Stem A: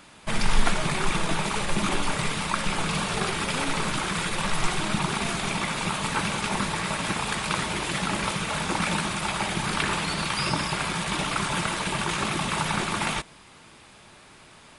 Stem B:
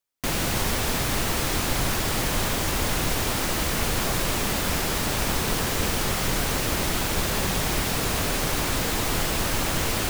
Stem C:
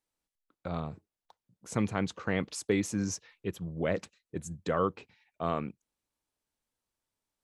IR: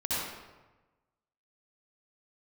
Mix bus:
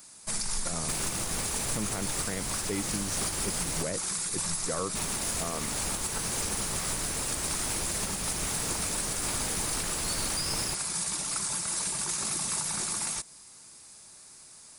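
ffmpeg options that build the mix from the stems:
-filter_complex "[0:a]aexciter=amount=8.3:drive=5.7:freq=4.6k,volume=-11dB[a];[1:a]adelay=650,volume=-8dB,asplit=3[b][c][d];[b]atrim=end=3.83,asetpts=PTS-STARTPTS,afade=t=out:st=3.826:d=0.004:c=hsin[e];[c]atrim=start=3.83:end=4.95,asetpts=PTS-STARTPTS,volume=0[f];[d]atrim=start=4.95,asetpts=PTS-STARTPTS,afade=t=in:d=0.004:c=hsin[g];[e][f][g]concat=n=3:v=0:a=1[h];[2:a]volume=1.5dB[i];[a][h][i]amix=inputs=3:normalize=0,alimiter=limit=-20dB:level=0:latency=1:release=270"

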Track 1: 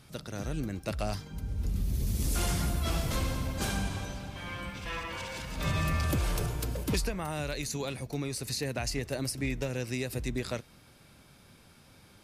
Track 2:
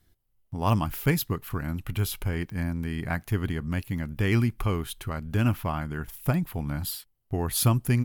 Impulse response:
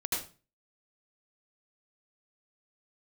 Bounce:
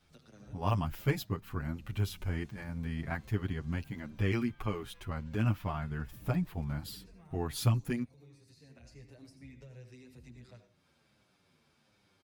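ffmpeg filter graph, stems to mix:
-filter_complex "[0:a]highpass=58,lowshelf=f=170:g=-7,acrossover=split=220[a][b];[b]acompressor=threshold=-47dB:ratio=5[c];[a][c]amix=inputs=2:normalize=0,volume=-10.5dB,asplit=2[d][e];[e]volume=-10.5dB[f];[1:a]volume=-4dB,asplit=2[g][h];[h]apad=whole_len=539389[i];[d][i]sidechaincompress=threshold=-46dB:ratio=8:attack=16:release=574[j];[2:a]atrim=start_sample=2205[k];[f][k]afir=irnorm=-1:irlink=0[l];[j][g][l]amix=inputs=3:normalize=0,equalizer=f=12k:w=1:g=-11,asplit=2[m][n];[n]adelay=8.1,afreqshift=-1.4[o];[m][o]amix=inputs=2:normalize=1"

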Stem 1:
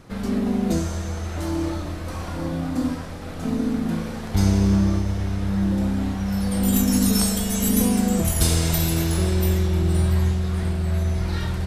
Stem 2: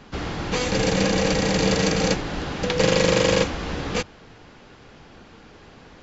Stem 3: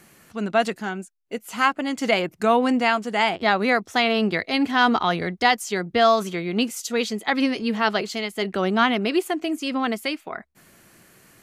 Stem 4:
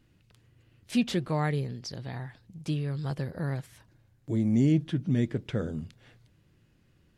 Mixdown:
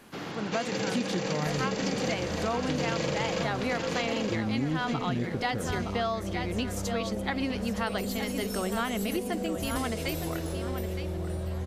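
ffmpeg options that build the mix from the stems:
-filter_complex "[0:a]equalizer=f=530:w=1.8:g=14.5,acompressor=threshold=-21dB:ratio=6,adelay=1350,volume=-8.5dB[a];[1:a]highpass=f=130:w=0.5412,highpass=f=130:w=1.3066,volume=-7dB,asplit=2[b][c];[c]volume=-4.5dB[d];[2:a]volume=-7dB,asplit=2[e][f];[f]volume=-10dB[g];[3:a]volume=0dB[h];[d][g]amix=inputs=2:normalize=0,aecho=0:1:916|1832|2748|3664:1|0.29|0.0841|0.0244[i];[a][b][e][h][i]amix=inputs=5:normalize=0,acompressor=threshold=-26dB:ratio=5"

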